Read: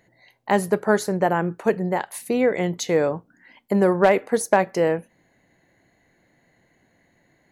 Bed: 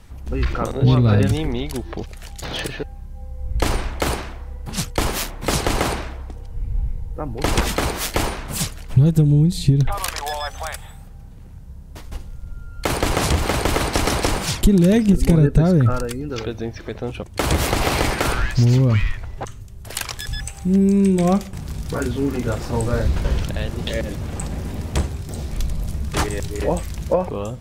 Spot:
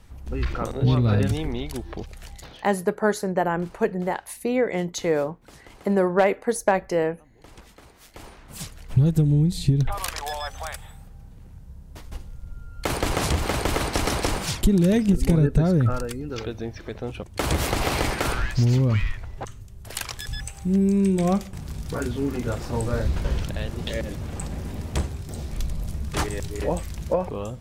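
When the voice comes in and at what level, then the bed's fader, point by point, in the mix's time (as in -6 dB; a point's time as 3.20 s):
2.15 s, -2.5 dB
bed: 2.33 s -5 dB
2.71 s -28.5 dB
7.93 s -28.5 dB
8.94 s -4.5 dB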